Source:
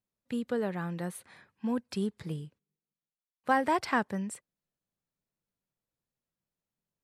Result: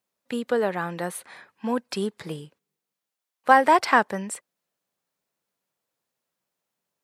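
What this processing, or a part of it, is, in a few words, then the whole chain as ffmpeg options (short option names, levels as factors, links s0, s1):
filter by subtraction: -filter_complex "[0:a]asplit=2[s0][s1];[s1]lowpass=690,volume=-1[s2];[s0][s2]amix=inputs=2:normalize=0,volume=2.82"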